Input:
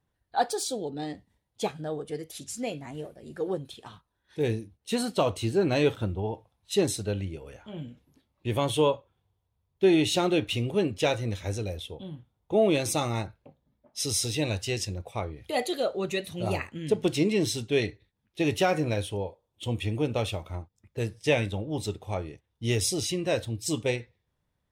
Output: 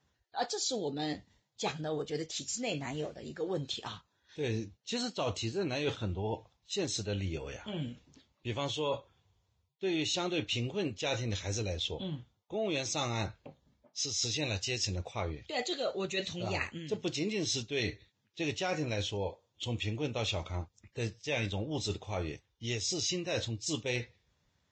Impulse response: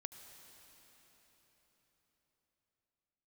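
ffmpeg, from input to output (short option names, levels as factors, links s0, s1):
-af "highshelf=f=2300:g=9,areverse,acompressor=threshold=0.02:ratio=5,areverse,volume=1.26" -ar 16000 -c:a libvorbis -b:a 32k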